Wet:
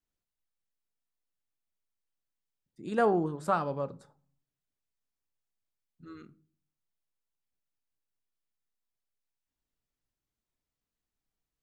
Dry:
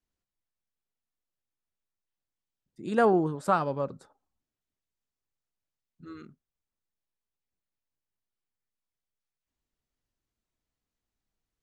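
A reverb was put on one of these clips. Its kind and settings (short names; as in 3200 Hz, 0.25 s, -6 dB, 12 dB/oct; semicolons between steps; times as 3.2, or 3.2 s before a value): shoebox room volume 380 m³, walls furnished, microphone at 0.35 m; gain -3.5 dB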